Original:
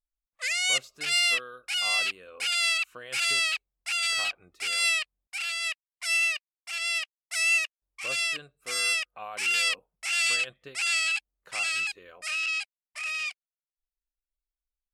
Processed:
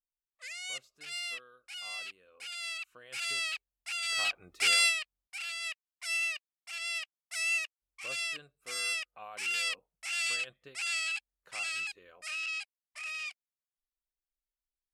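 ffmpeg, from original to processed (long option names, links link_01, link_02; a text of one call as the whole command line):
ffmpeg -i in.wav -af "volume=5dB,afade=type=in:start_time=2.58:duration=0.93:silence=0.446684,afade=type=in:start_time=4.06:duration=0.63:silence=0.237137,afade=type=out:start_time=4.69:duration=0.25:silence=0.251189" out.wav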